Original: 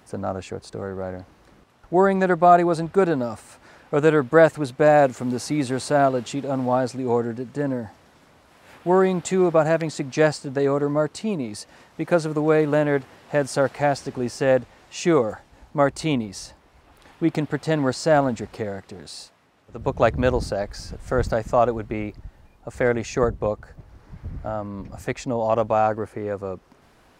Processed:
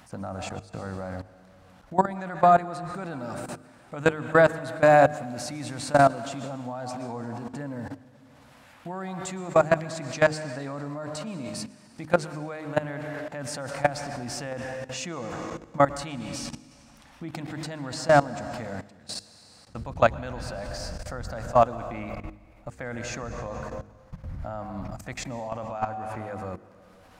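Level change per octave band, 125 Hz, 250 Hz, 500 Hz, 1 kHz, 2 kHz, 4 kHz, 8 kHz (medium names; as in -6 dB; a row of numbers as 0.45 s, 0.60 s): -5.5 dB, -8.5 dB, -6.0 dB, -2.5 dB, -2.0 dB, -2.5 dB, -2.5 dB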